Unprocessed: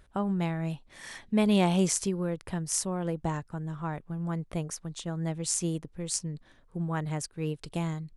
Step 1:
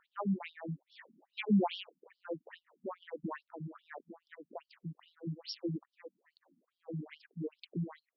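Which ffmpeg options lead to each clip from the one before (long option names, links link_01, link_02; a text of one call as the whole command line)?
ffmpeg -i in.wav -af "afftfilt=real='re*between(b*sr/1024,200*pow(4100/200,0.5+0.5*sin(2*PI*2.4*pts/sr))/1.41,200*pow(4100/200,0.5+0.5*sin(2*PI*2.4*pts/sr))*1.41)':imag='im*between(b*sr/1024,200*pow(4100/200,0.5+0.5*sin(2*PI*2.4*pts/sr))/1.41,200*pow(4100/200,0.5+0.5*sin(2*PI*2.4*pts/sr))*1.41)':win_size=1024:overlap=0.75,volume=-1dB" out.wav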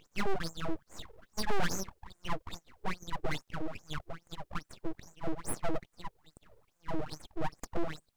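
ffmpeg -i in.wav -af "aeval=exprs='abs(val(0))':channel_layout=same,aeval=exprs='(tanh(28.2*val(0)+0.75)-tanh(0.75))/28.2':channel_layout=same,volume=17.5dB" out.wav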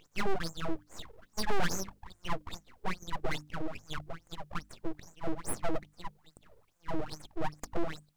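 ffmpeg -i in.wav -af "bandreject=frequency=50:width_type=h:width=6,bandreject=frequency=100:width_type=h:width=6,bandreject=frequency=150:width_type=h:width=6,bandreject=frequency=200:width_type=h:width=6,bandreject=frequency=250:width_type=h:width=6,bandreject=frequency=300:width_type=h:width=6,volume=1dB" out.wav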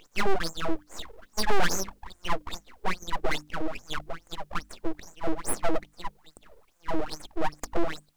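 ffmpeg -i in.wav -af "equalizer=frequency=120:width=1.6:gain=-14,volume=7dB" out.wav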